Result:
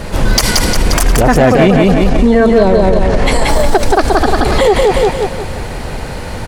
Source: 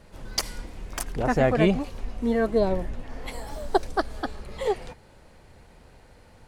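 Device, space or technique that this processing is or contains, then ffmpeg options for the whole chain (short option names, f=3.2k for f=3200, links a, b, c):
loud club master: -filter_complex "[0:a]asettb=1/sr,asplit=3[a][b][c];[a]atrim=end=1.924[d];[b]atrim=start=1.92:end=3.49,asetpts=PTS-STARTPTS,afade=t=in:d=0.004:c=qsin,afade=t=out:st=1.566:d=0.004:c=qsin,lowpass=f=10k:w=0.5412,lowpass=f=10k:w=1.3066[e];[c]atrim=start=3.486[f];[d][e]acrossfade=d=0.004:c1=hsin:c2=qsin[g];[g][f]acrossfade=d=0.004:c1=qsin:c2=hsin,aecho=1:1:177|354|531|708|885:0.631|0.246|0.096|0.0374|0.0146,acompressor=threshold=-26dB:ratio=2,asoftclip=type=hard:threshold=-19.5dB,alimiter=level_in=29.5dB:limit=-1dB:release=50:level=0:latency=1,volume=-1dB"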